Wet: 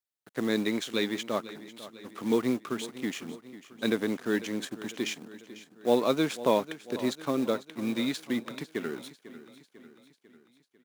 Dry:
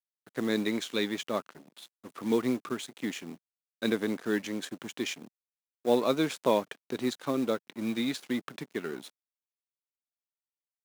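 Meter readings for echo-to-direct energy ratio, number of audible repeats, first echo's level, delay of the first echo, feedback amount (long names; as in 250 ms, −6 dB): −14.5 dB, 4, −16.0 dB, 497 ms, 55%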